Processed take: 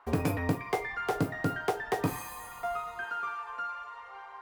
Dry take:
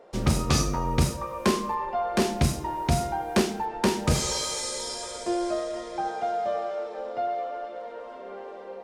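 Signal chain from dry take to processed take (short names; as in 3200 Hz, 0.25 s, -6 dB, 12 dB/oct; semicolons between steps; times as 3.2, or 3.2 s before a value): bell 4200 Hz -15 dB 2.8 oct; speed mistake 7.5 ips tape played at 15 ips; dynamic EQ 7400 Hz, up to +5 dB, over -56 dBFS, Q 0.89; gain -4.5 dB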